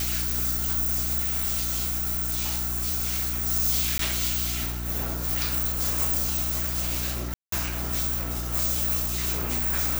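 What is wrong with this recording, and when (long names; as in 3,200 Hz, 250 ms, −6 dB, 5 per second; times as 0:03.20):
mains hum 60 Hz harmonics 6 −32 dBFS
0:01.19–0:03.46: clipping −23 dBFS
0:03.98–0:03.99: drop-out 13 ms
0:07.34–0:07.52: drop-out 183 ms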